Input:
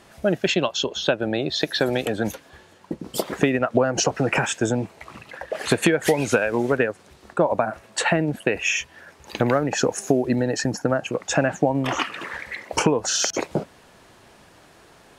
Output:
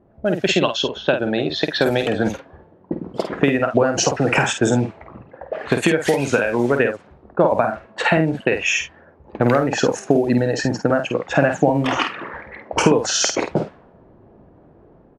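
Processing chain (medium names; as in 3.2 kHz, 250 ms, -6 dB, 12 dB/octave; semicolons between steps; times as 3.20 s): level-controlled noise filter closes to 460 Hz, open at -17 dBFS; level rider gain up to 6 dB; doubling 50 ms -7 dB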